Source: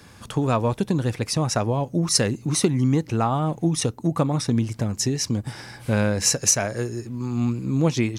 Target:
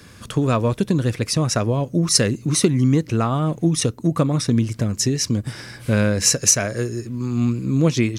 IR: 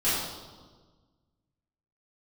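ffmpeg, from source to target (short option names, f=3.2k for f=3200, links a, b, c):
-af "equalizer=f=830:t=o:w=0.41:g=-10,volume=3.5dB"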